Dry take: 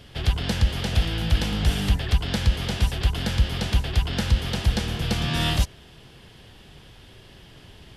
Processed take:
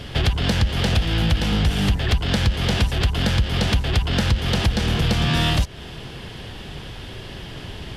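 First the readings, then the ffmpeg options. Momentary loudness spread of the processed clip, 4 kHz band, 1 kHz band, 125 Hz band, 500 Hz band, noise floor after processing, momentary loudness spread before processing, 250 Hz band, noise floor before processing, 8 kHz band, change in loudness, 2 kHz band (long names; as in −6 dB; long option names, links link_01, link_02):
15 LU, +4.5 dB, +5.5 dB, +4.0 dB, +6.0 dB, −36 dBFS, 3 LU, +5.5 dB, −49 dBFS, +2.5 dB, +4.0 dB, +5.5 dB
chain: -filter_complex "[0:a]asplit=2[link_01][link_02];[link_02]volume=29dB,asoftclip=hard,volume=-29dB,volume=-3dB[link_03];[link_01][link_03]amix=inputs=2:normalize=0,acompressor=threshold=-25dB:ratio=5,highshelf=frequency=7200:gain=-7,volume=8.5dB"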